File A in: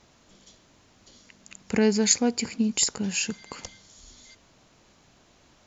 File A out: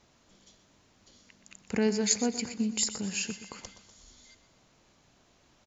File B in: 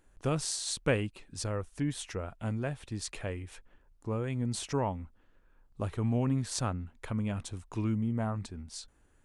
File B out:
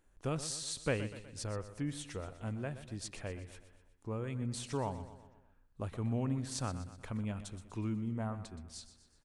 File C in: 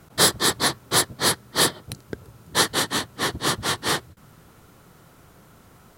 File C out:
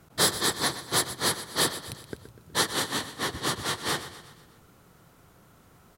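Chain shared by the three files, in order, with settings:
repeating echo 123 ms, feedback 52%, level −13 dB
level −5.5 dB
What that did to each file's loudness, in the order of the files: −5.0, −5.5, −5.5 LU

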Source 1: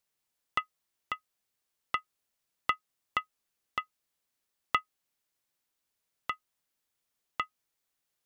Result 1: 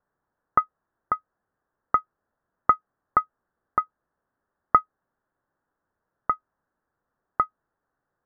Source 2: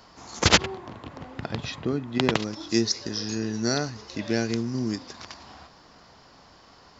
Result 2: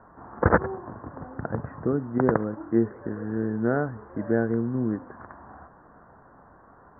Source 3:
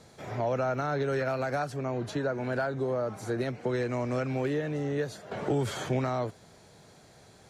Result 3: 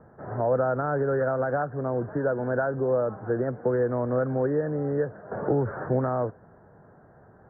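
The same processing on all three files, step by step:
Butterworth low-pass 1,700 Hz 72 dB per octave
dynamic equaliser 500 Hz, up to +6 dB, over −46 dBFS, Q 5.1
loudness normalisation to −27 LKFS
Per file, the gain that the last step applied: +12.0, +1.5, +3.0 decibels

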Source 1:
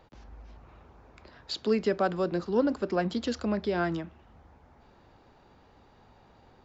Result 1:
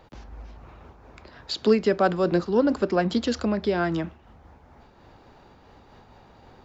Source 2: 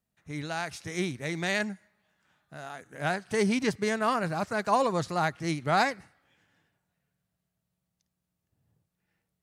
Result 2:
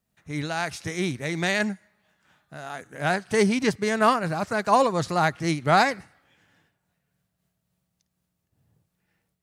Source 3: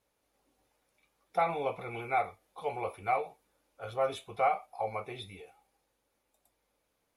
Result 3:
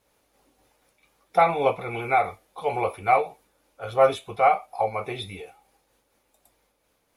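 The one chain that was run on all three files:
amplitude modulation by smooth noise, depth 60%
loudness normalisation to −24 LKFS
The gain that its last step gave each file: +9.0, +8.5, +12.5 decibels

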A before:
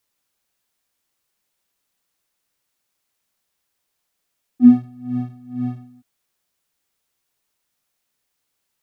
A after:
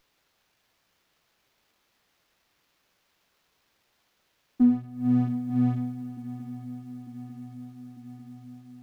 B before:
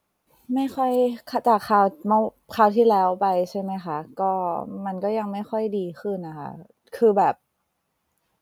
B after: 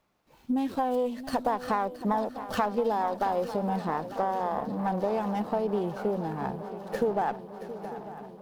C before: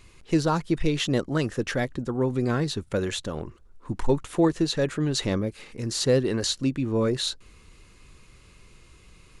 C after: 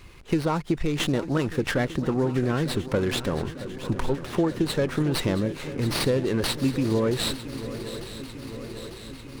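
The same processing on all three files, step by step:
downward compressor 6 to 1, threshold −26 dBFS
feedback echo with a long and a short gap by turns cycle 898 ms, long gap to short 3 to 1, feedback 67%, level −14 dB
windowed peak hold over 5 samples
normalise the peak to −12 dBFS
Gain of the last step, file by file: +7.0, +1.5, +5.5 decibels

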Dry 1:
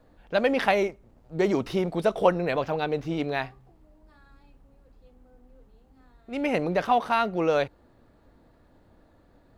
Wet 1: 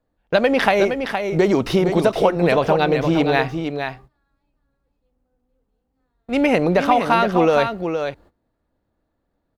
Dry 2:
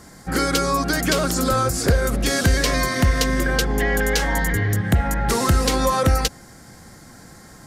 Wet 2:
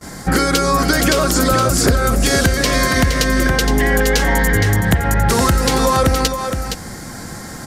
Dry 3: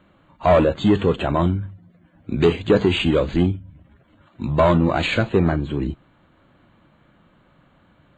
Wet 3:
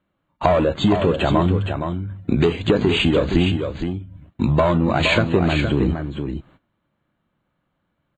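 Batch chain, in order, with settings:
noise gate −46 dBFS, range −27 dB
downward compressor 6 to 1, threshold −25 dBFS
on a send: single-tap delay 467 ms −7 dB
on the sum: normalise the peak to −1.5 dBFS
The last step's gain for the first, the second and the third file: +12.5, +12.5, +10.0 decibels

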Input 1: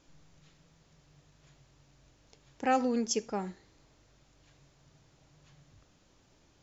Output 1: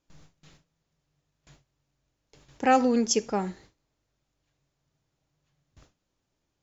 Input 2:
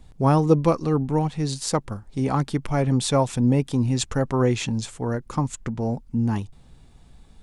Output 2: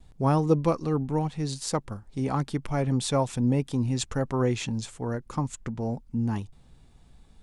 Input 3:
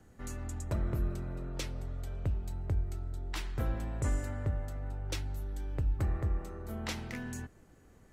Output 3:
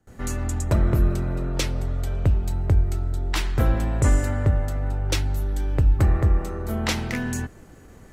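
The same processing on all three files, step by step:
noise gate with hold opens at −50 dBFS
normalise the peak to −9 dBFS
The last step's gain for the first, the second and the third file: +6.5, −4.5, +13.0 decibels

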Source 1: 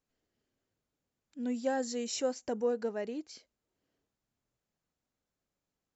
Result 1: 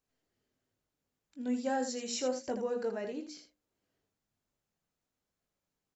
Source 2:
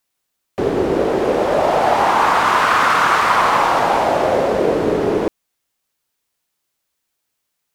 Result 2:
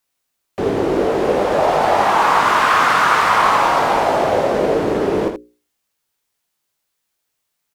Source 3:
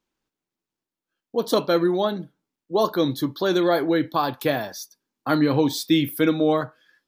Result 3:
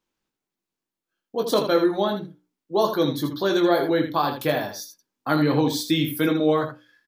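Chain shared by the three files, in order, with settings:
mains-hum notches 60/120/180/240/300/360/420/480/540 Hz
ambience of single reflections 20 ms −6.5 dB, 80 ms −8 dB
level −1 dB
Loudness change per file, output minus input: −0.5, 0.0, −0.5 LU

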